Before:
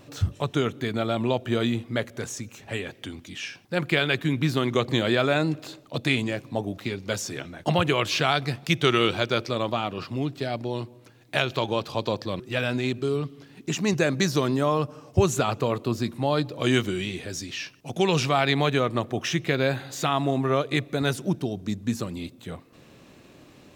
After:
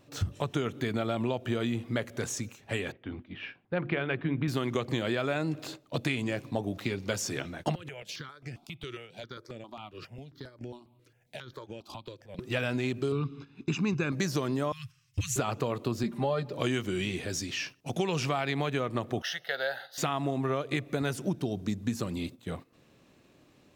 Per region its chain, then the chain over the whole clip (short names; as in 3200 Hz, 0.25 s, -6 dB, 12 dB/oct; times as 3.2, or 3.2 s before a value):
2.92–4.48 Gaussian blur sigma 3.2 samples + notches 50/100/150/200/250/300/350 Hz
7.75–12.39 compressor 12:1, threshold -34 dBFS + step phaser 7.4 Hz 210–3900 Hz
13.12–14.12 LPF 4200 Hz + comb 0.8 ms, depth 72%
14.72–15.36 elliptic band-stop 110–1900 Hz, stop band 80 dB + hard clip -21 dBFS
16.03–16.53 high shelf 3800 Hz -8 dB + comb 5 ms, depth 81%
19.22–19.98 HPF 630 Hz + fixed phaser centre 1600 Hz, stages 8
whole clip: gate -42 dBFS, range -10 dB; dynamic EQ 3800 Hz, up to -6 dB, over -47 dBFS, Q 5.3; compressor, threshold -26 dBFS